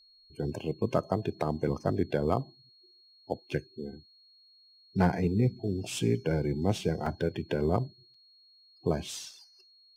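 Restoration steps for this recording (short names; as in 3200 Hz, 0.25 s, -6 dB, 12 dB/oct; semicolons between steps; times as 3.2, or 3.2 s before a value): clip repair -14 dBFS; notch 4300 Hz, Q 30; interpolate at 7.06/8.14, 4.1 ms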